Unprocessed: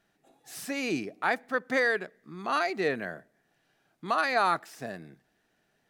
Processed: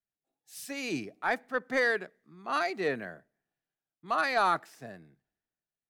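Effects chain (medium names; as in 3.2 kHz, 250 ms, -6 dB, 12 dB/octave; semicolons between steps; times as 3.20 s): saturation -15 dBFS, distortion -22 dB; three bands expanded up and down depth 70%; trim -2 dB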